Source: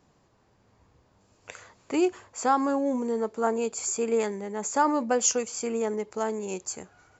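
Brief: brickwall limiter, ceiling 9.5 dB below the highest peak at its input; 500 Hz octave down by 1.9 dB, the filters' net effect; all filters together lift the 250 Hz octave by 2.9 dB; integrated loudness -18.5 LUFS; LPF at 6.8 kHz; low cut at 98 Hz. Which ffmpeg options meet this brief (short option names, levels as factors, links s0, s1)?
-af "highpass=98,lowpass=6800,equalizer=f=250:t=o:g=4.5,equalizer=f=500:t=o:g=-3.5,volume=4.22,alimiter=limit=0.376:level=0:latency=1"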